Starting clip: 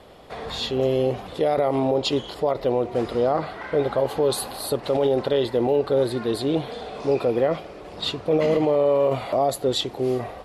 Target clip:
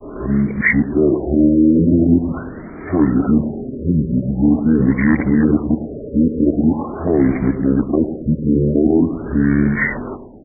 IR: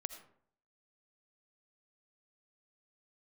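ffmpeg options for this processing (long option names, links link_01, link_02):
-filter_complex "[0:a]areverse,asetrate=24046,aresample=44100,atempo=1.83401,acrossover=split=1300[link_01][link_02];[link_01]aecho=1:1:106|212|318|424|530:0.282|0.135|0.0649|0.0312|0.015[link_03];[link_02]acontrast=81[link_04];[link_03][link_04]amix=inputs=2:normalize=0,afftfilt=real='re*lt(b*sr/1024,560*pow(2400/560,0.5+0.5*sin(2*PI*0.44*pts/sr)))':imag='im*lt(b*sr/1024,560*pow(2400/560,0.5+0.5*sin(2*PI*0.44*pts/sr)))':win_size=1024:overlap=0.75,volume=7dB"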